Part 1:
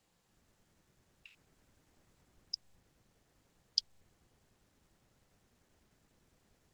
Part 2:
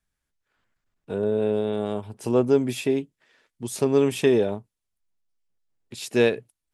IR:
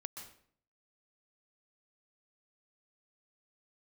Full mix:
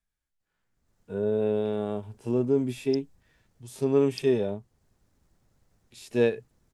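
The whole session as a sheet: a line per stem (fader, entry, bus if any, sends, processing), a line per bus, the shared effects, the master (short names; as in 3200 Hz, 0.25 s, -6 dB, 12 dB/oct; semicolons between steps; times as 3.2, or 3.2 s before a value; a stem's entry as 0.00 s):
-15.5 dB, 0.40 s, no send, low shelf 140 Hz +8.5 dB; AGC gain up to 15.5 dB; bell 2900 Hz -5 dB 0.96 oct
-2.0 dB, 0.00 s, no send, harmonic-percussive split percussive -18 dB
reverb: off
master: dry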